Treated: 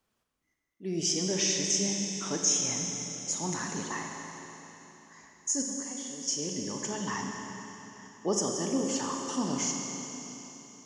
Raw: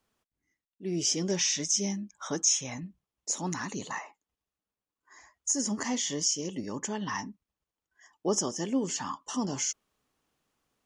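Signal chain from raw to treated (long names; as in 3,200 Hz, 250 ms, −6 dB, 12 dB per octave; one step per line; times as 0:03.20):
0:05.62–0:06.28: tuned comb filter 560 Hz, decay 0.5 s, mix 80%
four-comb reverb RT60 3.7 s, combs from 32 ms, DRR 1 dB
level −1.5 dB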